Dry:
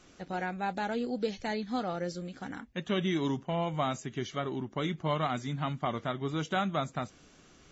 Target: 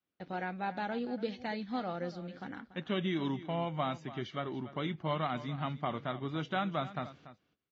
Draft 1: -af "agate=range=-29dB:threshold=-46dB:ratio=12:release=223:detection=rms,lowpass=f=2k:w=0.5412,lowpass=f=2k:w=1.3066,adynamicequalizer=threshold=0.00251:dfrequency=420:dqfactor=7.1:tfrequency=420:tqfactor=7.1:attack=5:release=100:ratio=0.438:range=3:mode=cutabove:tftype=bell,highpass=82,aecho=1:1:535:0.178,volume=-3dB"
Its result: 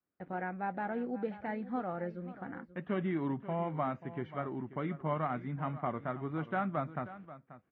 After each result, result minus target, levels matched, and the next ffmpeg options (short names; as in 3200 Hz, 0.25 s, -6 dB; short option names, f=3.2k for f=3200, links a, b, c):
echo 0.248 s late; 4000 Hz band -16.5 dB
-af "agate=range=-29dB:threshold=-46dB:ratio=12:release=223:detection=rms,lowpass=f=2k:w=0.5412,lowpass=f=2k:w=1.3066,adynamicequalizer=threshold=0.00251:dfrequency=420:dqfactor=7.1:tfrequency=420:tqfactor=7.1:attack=5:release=100:ratio=0.438:range=3:mode=cutabove:tftype=bell,highpass=82,aecho=1:1:287:0.178,volume=-3dB"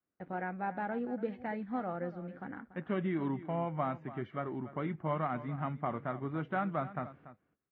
4000 Hz band -16.5 dB
-af "agate=range=-29dB:threshold=-46dB:ratio=12:release=223:detection=rms,lowpass=f=4.4k:w=0.5412,lowpass=f=4.4k:w=1.3066,adynamicequalizer=threshold=0.00251:dfrequency=420:dqfactor=7.1:tfrequency=420:tqfactor=7.1:attack=5:release=100:ratio=0.438:range=3:mode=cutabove:tftype=bell,highpass=82,aecho=1:1:287:0.178,volume=-3dB"